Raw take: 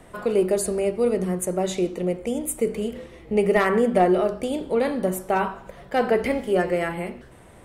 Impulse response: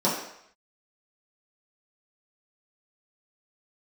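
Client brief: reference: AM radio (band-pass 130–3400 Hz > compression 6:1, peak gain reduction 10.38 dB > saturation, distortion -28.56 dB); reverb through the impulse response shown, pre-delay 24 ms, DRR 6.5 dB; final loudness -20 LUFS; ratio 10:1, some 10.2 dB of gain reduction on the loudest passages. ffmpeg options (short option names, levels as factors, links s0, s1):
-filter_complex "[0:a]acompressor=threshold=0.0562:ratio=10,asplit=2[s0][s1];[1:a]atrim=start_sample=2205,adelay=24[s2];[s1][s2]afir=irnorm=-1:irlink=0,volume=0.0944[s3];[s0][s3]amix=inputs=2:normalize=0,highpass=130,lowpass=3400,acompressor=threshold=0.0251:ratio=6,asoftclip=threshold=0.0841,volume=6.68"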